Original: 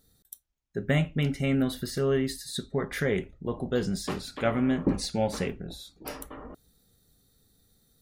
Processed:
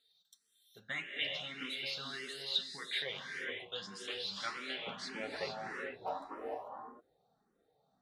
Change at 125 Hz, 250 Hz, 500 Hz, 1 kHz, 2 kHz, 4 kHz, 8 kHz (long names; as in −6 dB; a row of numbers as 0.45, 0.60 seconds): −28.0, −23.0, −15.0, −5.5, −3.5, +1.5, −13.0 decibels